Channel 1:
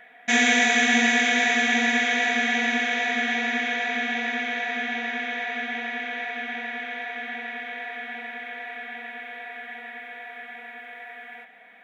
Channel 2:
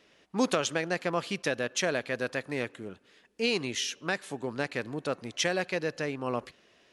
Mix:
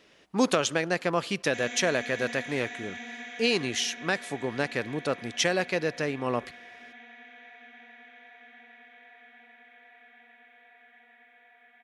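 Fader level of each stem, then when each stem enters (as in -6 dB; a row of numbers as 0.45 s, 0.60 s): -19.0 dB, +3.0 dB; 1.25 s, 0.00 s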